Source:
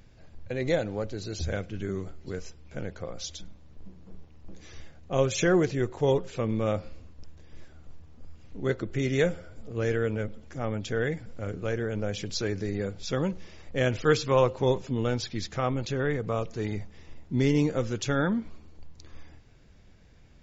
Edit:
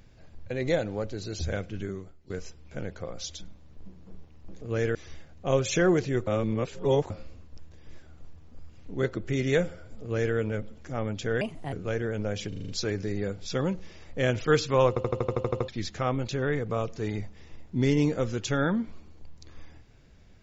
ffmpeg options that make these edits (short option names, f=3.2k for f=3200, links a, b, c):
-filter_complex "[0:a]asplit=23[a][b][c][d][e][f][g][h][i][j][k][l][m][n][o][p][q][r][s][t][u][v][w];[a]atrim=end=2.3,asetpts=PTS-STARTPTS,afade=t=out:st=1.81:d=0.49:c=qua:silence=0.188365[x];[b]atrim=start=2.3:end=4.612,asetpts=PTS-STARTPTS,afade=t=in:d=0.004:c=hsin:silence=0.188365[y];[c]atrim=start=9.668:end=10.012[z];[d]atrim=start=4.608:end=5.932[aa];[e]atrim=start=5.928:end=6.762,asetpts=PTS-STARTPTS,areverse[ab];[f]atrim=start=6.758:end=11.074[ac];[g]atrim=start=11.07:end=11.5,asetpts=PTS-STARTPTS,asetrate=60417,aresample=44100[ad];[h]atrim=start=11.496:end=12.302[ae];[i]atrim=start=12.258:end=12.302[af];[j]atrim=start=12.258:end=12.302[ag];[k]atrim=start=12.258:end=12.302[ah];[l]atrim=start=12.258:end=12.302[ai];[m]atrim=start=12.258:end=14.542[aj];[n]atrim=start=14.458:end=14.542[ak];[o]atrim=start=14.458:end=14.542[al];[p]atrim=start=14.458:end=14.542[am];[q]atrim=start=14.458:end=14.542[an];[r]atrim=start=14.458:end=14.542[ao];[s]atrim=start=14.458:end=14.542[ap];[t]atrim=start=14.458:end=14.542[aq];[u]atrim=start=14.458:end=14.542[ar];[v]atrim=start=14.458:end=14.542[as];[w]atrim=start=15.258[at];[x][y]concat=n=2:v=0:a=1[au];[au][z]acrossfade=d=0.004:c1=hsin:c2=hsin[av];[av][aa]acrossfade=d=0.004:c1=hsin:c2=hsin[aw];[aw][ab]acrossfade=d=0.004:c1=hsin:c2=hsin[ax];[ax][ac]acrossfade=d=0.004:c1=hsin:c2=hsin[ay];[ay][ad]acrossfade=d=0.004:c1=hsin:c2=hsin[az];[az][ae]acrossfade=d=0.004:c1=hsin:c2=hsin[ba];[ba][af]acrossfade=d=0.004:c1=hsin:c2=hsin[bb];[bb][ag]acrossfade=d=0.004:c1=hsin:c2=hsin[bc];[bc][ah]acrossfade=d=0.004:c1=hsin:c2=hsin[bd];[bd][ai]acrossfade=d=0.004:c1=hsin:c2=hsin[be];[be][aj]acrossfade=d=0.004:c1=hsin:c2=hsin[bf];[bf][ak]acrossfade=d=0.004:c1=hsin:c2=hsin[bg];[bg][al]acrossfade=d=0.004:c1=hsin:c2=hsin[bh];[bh][am]acrossfade=d=0.004:c1=hsin:c2=hsin[bi];[bi][an]acrossfade=d=0.004:c1=hsin:c2=hsin[bj];[bj][ao]acrossfade=d=0.004:c1=hsin:c2=hsin[bk];[bk][ap]acrossfade=d=0.004:c1=hsin:c2=hsin[bl];[bl][aq]acrossfade=d=0.004:c1=hsin:c2=hsin[bm];[bm][ar]acrossfade=d=0.004:c1=hsin:c2=hsin[bn];[bn][as]acrossfade=d=0.004:c1=hsin:c2=hsin[bo];[bo][at]acrossfade=d=0.004:c1=hsin:c2=hsin"